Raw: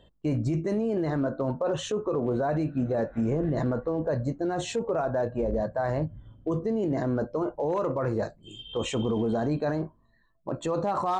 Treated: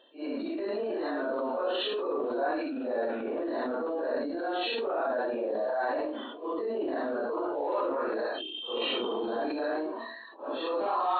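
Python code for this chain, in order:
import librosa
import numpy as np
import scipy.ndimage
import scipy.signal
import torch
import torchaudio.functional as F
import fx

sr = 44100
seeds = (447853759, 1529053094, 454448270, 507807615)

p1 = fx.phase_scramble(x, sr, seeds[0], window_ms=200)
p2 = fx.brickwall_bandpass(p1, sr, low_hz=230.0, high_hz=4400.0)
p3 = fx.over_compress(p2, sr, threshold_db=-32.0, ratio=-1.0)
p4 = p2 + (p3 * librosa.db_to_amplitude(-1.0))
p5 = fx.low_shelf(p4, sr, hz=450.0, db=-11.0)
p6 = fx.notch(p5, sr, hz=2100.0, q=6.3)
p7 = fx.transient(p6, sr, attack_db=-1, sustain_db=5)
p8 = fx.sustainer(p7, sr, db_per_s=38.0)
y = p8 * librosa.db_to_amplitude(-1.5)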